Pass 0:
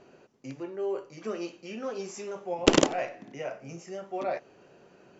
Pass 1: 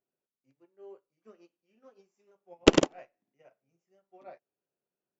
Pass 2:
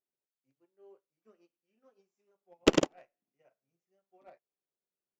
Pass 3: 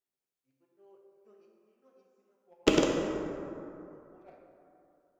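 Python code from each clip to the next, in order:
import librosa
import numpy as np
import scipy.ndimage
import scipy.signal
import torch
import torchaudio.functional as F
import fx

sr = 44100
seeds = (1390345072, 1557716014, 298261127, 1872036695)

y1 = fx.high_shelf(x, sr, hz=4700.0, db=-5.0)
y1 = fx.upward_expand(y1, sr, threshold_db=-42.0, expansion=2.5)
y1 = y1 * librosa.db_to_amplitude(2.5)
y2 = fx.leveller(y1, sr, passes=1)
y2 = y2 * librosa.db_to_amplitude(-6.5)
y3 = fx.rev_plate(y2, sr, seeds[0], rt60_s=2.8, hf_ratio=0.4, predelay_ms=0, drr_db=-0.5)
y3 = y3 * librosa.db_to_amplitude(-1.5)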